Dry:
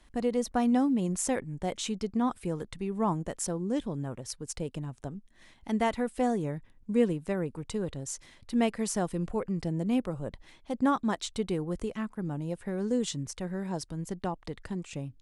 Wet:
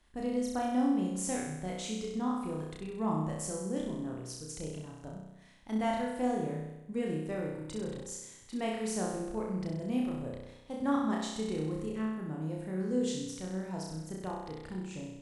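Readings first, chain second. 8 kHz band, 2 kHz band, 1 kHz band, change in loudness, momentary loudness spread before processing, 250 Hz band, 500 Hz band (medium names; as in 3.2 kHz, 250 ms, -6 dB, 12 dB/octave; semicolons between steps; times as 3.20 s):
-3.5 dB, -3.5 dB, -3.5 dB, -3.5 dB, 11 LU, -3.0 dB, -4.0 dB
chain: flutter echo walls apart 5.5 m, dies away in 0.96 s; trim -8 dB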